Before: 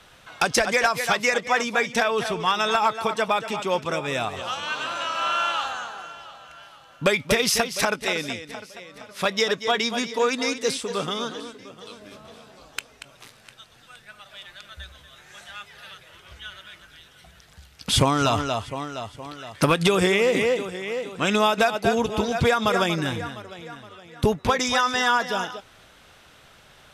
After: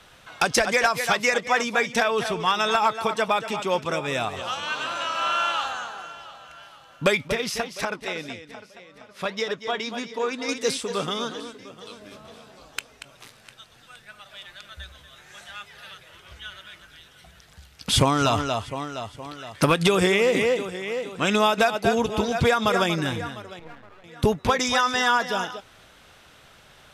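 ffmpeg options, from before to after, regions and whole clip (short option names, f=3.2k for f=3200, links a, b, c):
-filter_complex "[0:a]asettb=1/sr,asplit=3[a][b][c];[a]atrim=end=7.284[d];[b]atrim=start=7.28:end=10.49,asetpts=PTS-STARTPTS,afade=t=in:d=0.004:c=qsin,afade=t=out:st=3.206:d=0.004:c=qsin,flanger=delay=2:depth=5.2:regen=-83:speed=1.8:shape=sinusoidal,highshelf=f=5.2k:g=-8[e];[c]atrim=start=10.486[f];[d][e]acrossfade=d=0.004:c1=hsin:c2=qsin[g];[g][f]acrossfade=d=0.004:c1=qsin:c2=hsin,asettb=1/sr,asplit=3[h][i][j];[h]atrim=end=23.594[k];[i]atrim=start=23.59:end=24.04,asetpts=PTS-STARTPTS,afade=t=in:d=0.004:c=qsin,afade=t=out:st=0.446:d=0.004:c=qsin,lowpass=1.8k,aeval=exprs='max(val(0),0)':c=same[l];[j]atrim=start=24.036[m];[k][l]acrossfade=d=0.004:c1=hsin:c2=qsin[n];[n][m]acrossfade=d=0.004:c1=qsin:c2=hsin"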